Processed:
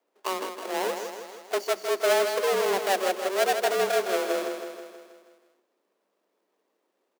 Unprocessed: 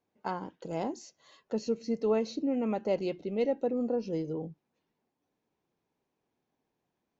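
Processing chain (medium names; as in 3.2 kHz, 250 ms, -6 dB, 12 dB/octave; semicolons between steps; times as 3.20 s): square wave that keeps the level; feedback delay 160 ms, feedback 57%, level -7 dB; frequency shift +190 Hz; trim +1 dB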